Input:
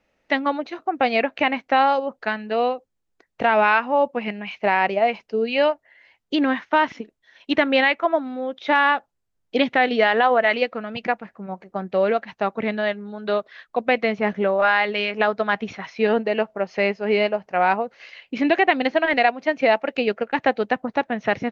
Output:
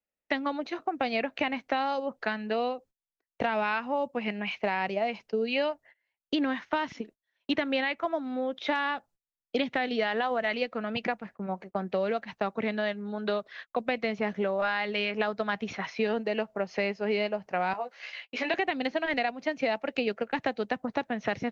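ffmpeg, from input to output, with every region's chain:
-filter_complex "[0:a]asettb=1/sr,asplit=3[s0][s1][s2];[s0]atrim=end=17.734[s3];[s1]atrim=start=17.73:end=18.54,asetpts=PTS-STARTPTS,afade=t=in:d=0.004:c=qsin,afade=t=out:st=0.806:d=0.004:c=qsin,highpass=580,asplit=2[s4][s5];[s5]adelay=16,volume=0.596[s6];[s4][s6]amix=inputs=2:normalize=0,atrim=end_sample=35721[s7];[s2]atrim=start=18.536[s8];[s3][s7]acrossfade=d=0.004:c1=hsin:c2=qsin[s9];[s9][s8]acrossfade=d=0.004:c1=qsin:c2=hsin,agate=range=0.0447:threshold=0.00708:ratio=16:detection=peak,acrossover=split=200|4200[s10][s11][s12];[s10]acompressor=threshold=0.01:ratio=4[s13];[s11]acompressor=threshold=0.0398:ratio=4[s14];[s12]acompressor=threshold=0.00794:ratio=4[s15];[s13][s14][s15]amix=inputs=3:normalize=0"

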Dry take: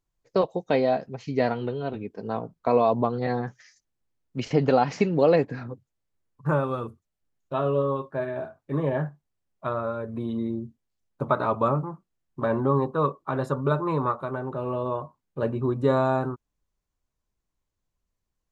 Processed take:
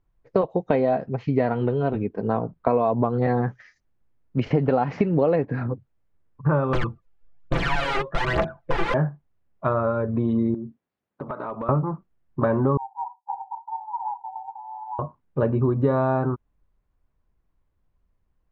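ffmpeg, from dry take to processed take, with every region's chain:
-filter_complex "[0:a]asettb=1/sr,asplit=3[s0][s1][s2];[s0]atrim=end=6.734[s3];[s1]atrim=start=6.73:end=8.94,asetpts=PTS-STARTPTS,afade=t=in:d=0.004:c=qsin,afade=t=out:st=2.206:d=0.004:c=qsin,aeval=exprs='(mod(21.1*val(0)+1,2)-1)/21.1':c=same,aecho=1:1:5.9:0.54,atrim=end_sample=97461,aphaser=in_gain=1:out_gain=1:delay=2.6:decay=0.68:speed=1.2:type=triangular[s4];[s2]atrim=start=8.936[s5];[s3][s4]acrossfade=d=0.004:c1=hsin:c2=qsin[s6];[s6][s5]acrossfade=d=0.004:c1=qsin:c2=hsin,asettb=1/sr,asplit=3[s7][s8][s9];[s7]atrim=end=10.544[s10];[s8]atrim=start=10.54:end=11.69,asetpts=PTS-STARTPTS,afade=t=in:d=0.004:c=qsin,afade=t=out:st=1.146:d=0.004:c=qsin,highpass=190,acompressor=threshold=0.0158:ratio=6:attack=3.2:release=140:knee=1:detection=peak,aeval=exprs='clip(val(0),-1,0.0224)':c=same[s11];[s9]atrim=start=11.686[s12];[s10][s11]acrossfade=d=0.004:c1=hsin:c2=qsin[s13];[s13][s12]acrossfade=d=0.004:c1=qsin:c2=hsin,asettb=1/sr,asplit=3[s14][s15][s16];[s14]atrim=end=12.774[s17];[s15]atrim=start=12.77:end=14.99,asetpts=PTS-STARTPTS,afade=t=in:d=0.004:c=qsin,afade=t=out:st=2.216:d=0.004:c=qsin,asuperpass=centerf=850:order=20:qfactor=3.8,aphaser=in_gain=1:out_gain=1:delay=3.2:decay=0.3:speed=1.3:type=sinusoidal[s18];[s16]atrim=start=14.986[s19];[s17][s18]acrossfade=d=0.004:c1=hsin:c2=qsin[s20];[s20][s19]acrossfade=d=0.004:c1=qsin:c2=hsin,lowpass=2000,lowshelf=f=120:g=6,acompressor=threshold=0.0562:ratio=5,volume=2.37"

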